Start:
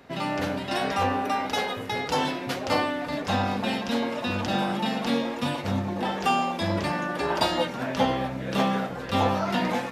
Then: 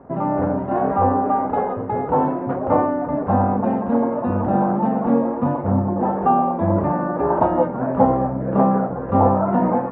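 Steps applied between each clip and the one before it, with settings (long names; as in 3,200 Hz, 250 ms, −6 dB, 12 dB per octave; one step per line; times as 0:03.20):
low-pass filter 1,100 Hz 24 dB per octave
level +8.5 dB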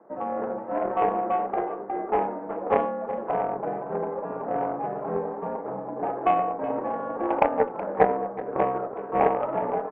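single-sideband voice off tune −64 Hz 360–2,400 Hz
harmonic generator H 3 −14 dB, 6 −42 dB, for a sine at −4 dBFS
single-tap delay 372 ms −16 dB
level +1 dB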